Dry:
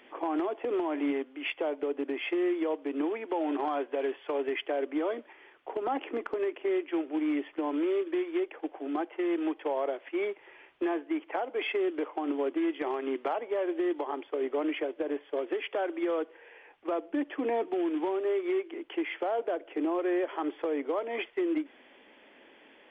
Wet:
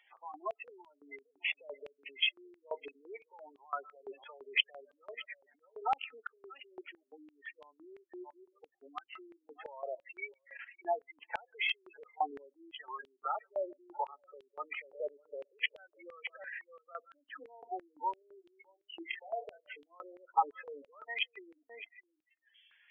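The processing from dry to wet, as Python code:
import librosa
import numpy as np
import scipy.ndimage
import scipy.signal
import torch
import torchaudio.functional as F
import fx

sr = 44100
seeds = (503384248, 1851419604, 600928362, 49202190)

y = fx.level_steps(x, sr, step_db=18)
y = fx.doubler(y, sr, ms=27.0, db=-5.5, at=(18.79, 20.03))
y = y + 10.0 ** (-13.5 / 20.0) * np.pad(y, (int(613 * sr / 1000.0), 0))[:len(y)]
y = fx.rev_freeverb(y, sr, rt60_s=0.54, hf_ratio=0.65, predelay_ms=110, drr_db=18.0)
y = fx.spec_gate(y, sr, threshold_db=-15, keep='strong')
y = fx.noise_reduce_blind(y, sr, reduce_db=20)
y = fx.rider(y, sr, range_db=4, speed_s=0.5)
y = fx.filter_held_highpass(y, sr, hz=5.9, low_hz=800.0, high_hz=3200.0)
y = F.gain(torch.from_numpy(y), 4.5).numpy()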